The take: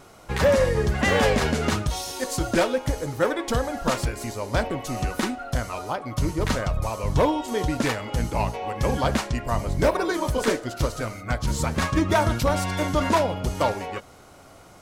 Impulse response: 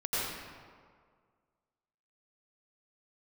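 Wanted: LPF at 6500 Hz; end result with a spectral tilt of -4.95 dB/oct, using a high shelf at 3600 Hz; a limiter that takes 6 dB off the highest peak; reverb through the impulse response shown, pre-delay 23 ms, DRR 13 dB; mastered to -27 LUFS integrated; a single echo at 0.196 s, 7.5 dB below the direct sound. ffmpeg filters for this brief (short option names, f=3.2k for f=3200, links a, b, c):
-filter_complex "[0:a]lowpass=6.5k,highshelf=f=3.6k:g=5,alimiter=limit=-17dB:level=0:latency=1,aecho=1:1:196:0.422,asplit=2[a][b];[1:a]atrim=start_sample=2205,adelay=23[c];[b][c]afir=irnorm=-1:irlink=0,volume=-21dB[d];[a][d]amix=inputs=2:normalize=0,volume=-0.5dB"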